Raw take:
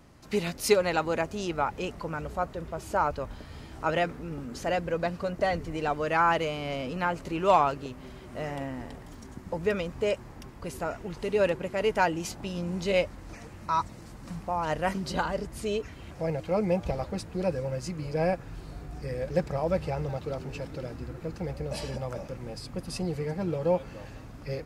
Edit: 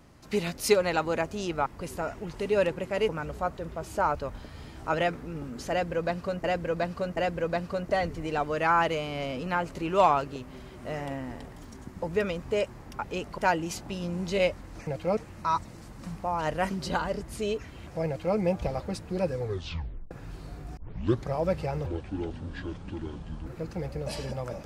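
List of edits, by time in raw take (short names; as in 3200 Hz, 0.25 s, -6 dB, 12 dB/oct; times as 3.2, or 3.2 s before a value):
1.66–2.05 swap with 10.49–11.92
4.67–5.4 loop, 3 plays
16.31–16.61 copy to 13.41
17.59 tape stop 0.76 s
19.01 tape start 0.52 s
20.1–21.11 speed 63%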